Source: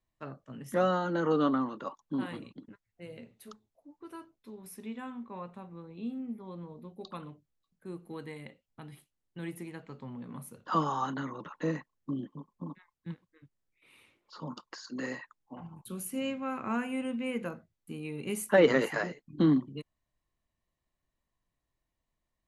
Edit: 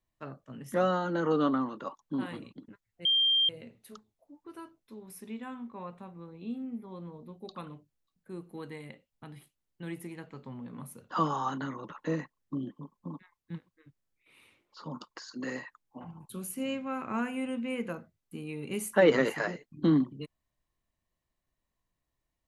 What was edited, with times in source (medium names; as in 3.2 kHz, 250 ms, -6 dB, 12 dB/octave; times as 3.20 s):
3.05 s: add tone 3.18 kHz -22 dBFS 0.44 s